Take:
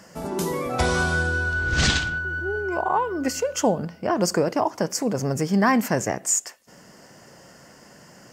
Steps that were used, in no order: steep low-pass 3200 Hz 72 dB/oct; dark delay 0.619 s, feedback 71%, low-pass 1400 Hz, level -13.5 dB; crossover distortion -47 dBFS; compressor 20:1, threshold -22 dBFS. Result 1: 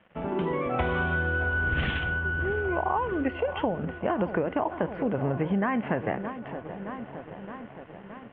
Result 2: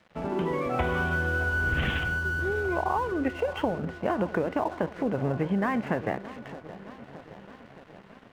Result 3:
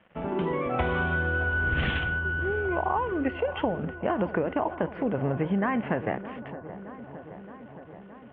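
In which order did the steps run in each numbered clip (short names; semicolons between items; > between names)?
dark delay > crossover distortion > compressor > steep low-pass; steep low-pass > compressor > dark delay > crossover distortion; crossover distortion > steep low-pass > compressor > dark delay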